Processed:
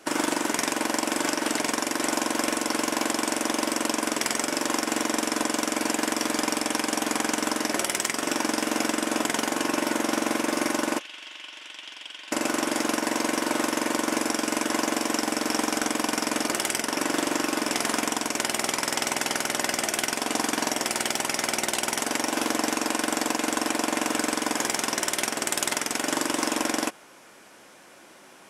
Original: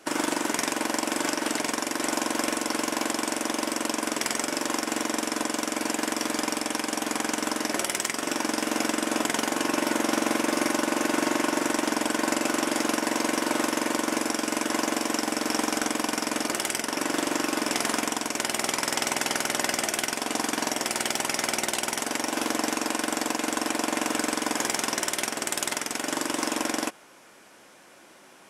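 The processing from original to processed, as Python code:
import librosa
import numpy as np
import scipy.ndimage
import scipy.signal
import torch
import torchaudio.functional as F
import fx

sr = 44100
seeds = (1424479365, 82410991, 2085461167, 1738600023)

y = fx.rider(x, sr, range_db=10, speed_s=0.5)
y = fx.bandpass_q(y, sr, hz=3100.0, q=4.3, at=(10.98, 12.31), fade=0.02)
y = y * librosa.db_to_amplitude(1.0)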